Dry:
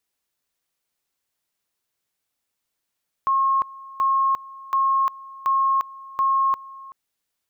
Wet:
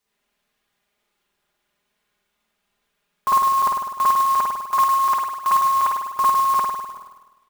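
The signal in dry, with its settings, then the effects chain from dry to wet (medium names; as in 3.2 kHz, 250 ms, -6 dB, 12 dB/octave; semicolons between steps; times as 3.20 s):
two-level tone 1.08 kHz -16.5 dBFS, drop 20.5 dB, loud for 0.35 s, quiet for 0.38 s, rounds 5
comb 4.9 ms, depth 88%; spring tank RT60 1.1 s, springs 50 ms, chirp 35 ms, DRR -9 dB; sampling jitter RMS 0.02 ms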